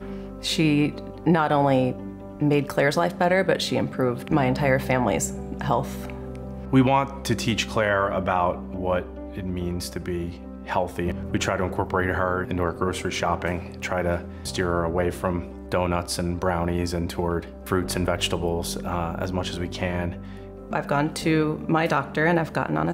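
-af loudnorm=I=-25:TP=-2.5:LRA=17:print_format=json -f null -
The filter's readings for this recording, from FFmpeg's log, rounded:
"input_i" : "-24.6",
"input_tp" : "-8.5",
"input_lra" : "4.4",
"input_thresh" : "-34.8",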